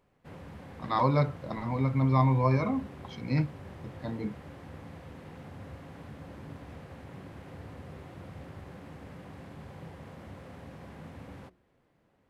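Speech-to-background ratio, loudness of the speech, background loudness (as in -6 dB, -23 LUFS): 18.0 dB, -28.5 LUFS, -46.5 LUFS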